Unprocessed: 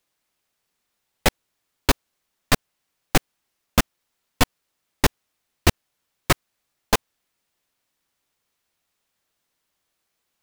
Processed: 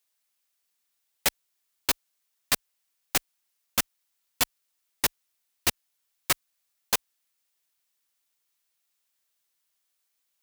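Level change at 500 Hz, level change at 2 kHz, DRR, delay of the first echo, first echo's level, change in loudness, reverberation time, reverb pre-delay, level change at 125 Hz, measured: -12.0 dB, -6.0 dB, none, none, none, -4.0 dB, none, none, -18.5 dB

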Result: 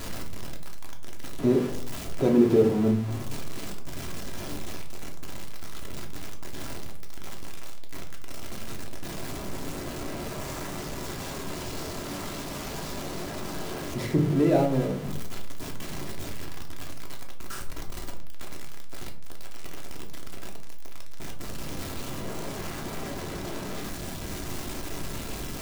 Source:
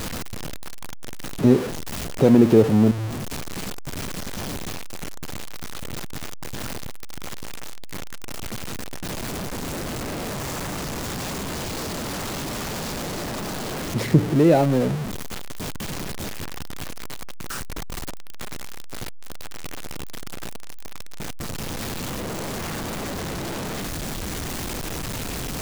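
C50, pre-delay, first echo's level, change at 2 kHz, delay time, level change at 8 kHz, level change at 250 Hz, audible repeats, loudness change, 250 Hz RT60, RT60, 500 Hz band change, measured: 10.0 dB, 3 ms, none, -6.5 dB, none, -7.0 dB, -5.5 dB, none, -5.0 dB, 0.70 s, 0.55 s, -4.0 dB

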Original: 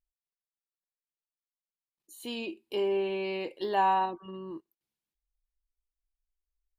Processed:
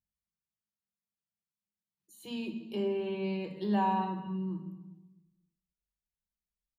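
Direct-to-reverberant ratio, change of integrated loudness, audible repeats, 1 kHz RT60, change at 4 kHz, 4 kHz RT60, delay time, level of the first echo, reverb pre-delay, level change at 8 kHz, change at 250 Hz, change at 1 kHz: 5.0 dB, -3.5 dB, 1, 1.0 s, -6.0 dB, 0.80 s, 0.251 s, -21.0 dB, 3 ms, n/a, +5.5 dB, -5.0 dB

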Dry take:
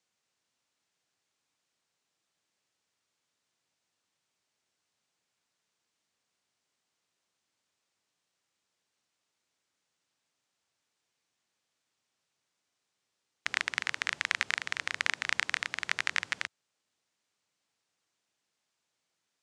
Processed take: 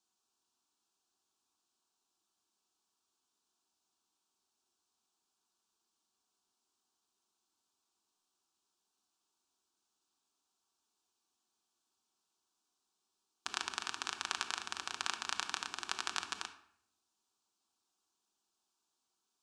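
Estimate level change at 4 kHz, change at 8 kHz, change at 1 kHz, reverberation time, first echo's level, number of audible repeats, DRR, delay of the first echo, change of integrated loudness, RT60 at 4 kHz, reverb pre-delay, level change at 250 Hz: -3.5 dB, -0.5 dB, -1.0 dB, 0.70 s, none, none, 6.5 dB, none, -7.5 dB, 0.50 s, 5 ms, -1.5 dB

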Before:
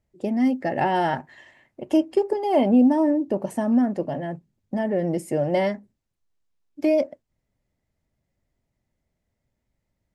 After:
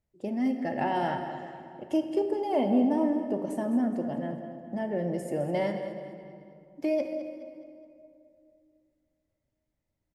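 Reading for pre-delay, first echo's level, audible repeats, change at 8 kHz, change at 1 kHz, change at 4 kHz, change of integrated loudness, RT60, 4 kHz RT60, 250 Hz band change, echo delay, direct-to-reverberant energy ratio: 23 ms, -12.0 dB, 4, n/a, -6.0 dB, -6.5 dB, -7.0 dB, 2.5 s, 1.6 s, -6.5 dB, 0.21 s, 5.5 dB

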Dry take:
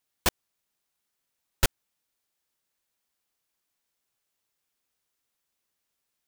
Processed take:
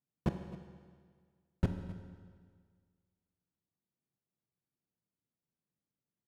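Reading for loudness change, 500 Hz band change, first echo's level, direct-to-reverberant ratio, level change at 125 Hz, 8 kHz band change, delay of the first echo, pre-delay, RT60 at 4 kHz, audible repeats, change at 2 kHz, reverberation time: -10.0 dB, -6.5 dB, -17.5 dB, 5.5 dB, +1.0 dB, under -30 dB, 0.262 s, 21 ms, 1.6 s, 1, -19.0 dB, 1.8 s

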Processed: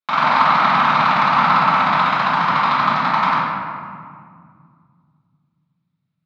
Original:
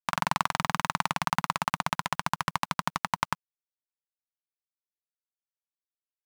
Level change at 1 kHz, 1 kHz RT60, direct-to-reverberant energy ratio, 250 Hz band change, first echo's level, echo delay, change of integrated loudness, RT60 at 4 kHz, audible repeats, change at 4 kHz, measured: +15.5 dB, 2.0 s, -15.0 dB, +12.0 dB, none, none, +14.5 dB, 1.1 s, none, +9.5 dB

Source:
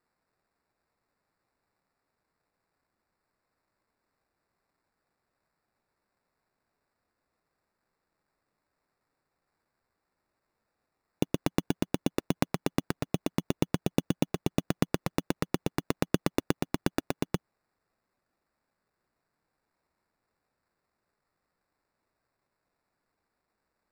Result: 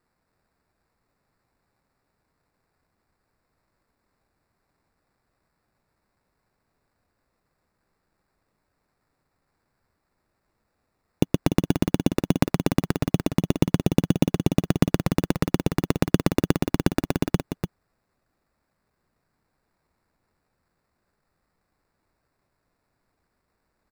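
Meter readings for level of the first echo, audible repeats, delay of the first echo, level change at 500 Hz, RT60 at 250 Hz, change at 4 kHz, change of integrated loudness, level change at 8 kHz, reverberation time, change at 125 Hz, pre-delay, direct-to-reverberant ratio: -7.0 dB, 1, 0.294 s, +6.5 dB, none, +5.0 dB, +8.0 dB, +5.0 dB, none, +10.5 dB, none, none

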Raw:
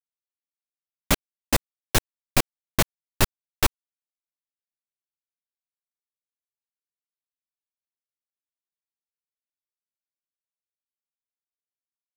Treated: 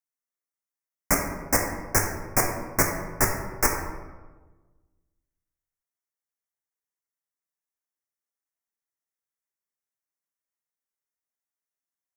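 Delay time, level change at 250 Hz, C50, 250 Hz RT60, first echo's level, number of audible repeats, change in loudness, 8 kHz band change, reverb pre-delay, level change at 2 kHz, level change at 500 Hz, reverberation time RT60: none, -0.5 dB, 4.5 dB, 1.6 s, none, none, +1.0 dB, +2.5 dB, 9 ms, +1.5 dB, +1.5 dB, 1.3 s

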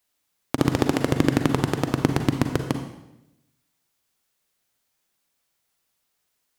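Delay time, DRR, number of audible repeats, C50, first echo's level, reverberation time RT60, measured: none, 6.0 dB, none, 7.0 dB, none, 0.90 s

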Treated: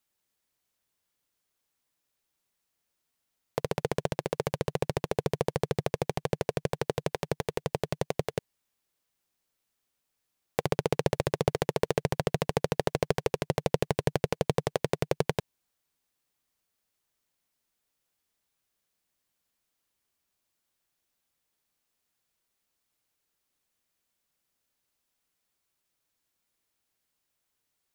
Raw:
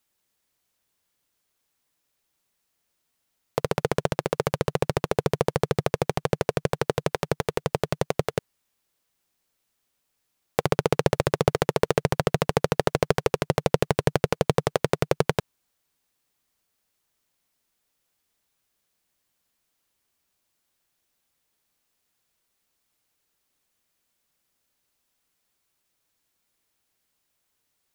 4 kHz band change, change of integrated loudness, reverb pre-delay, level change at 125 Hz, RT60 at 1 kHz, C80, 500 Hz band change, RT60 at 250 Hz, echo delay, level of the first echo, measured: -5.0 dB, -5.5 dB, none, -5.0 dB, none, none, -5.0 dB, none, none, none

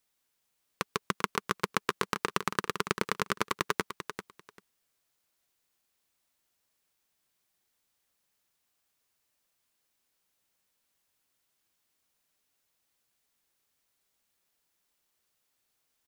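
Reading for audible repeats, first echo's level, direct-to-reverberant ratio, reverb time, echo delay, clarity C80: 2, -9.5 dB, none, none, 0.393 s, none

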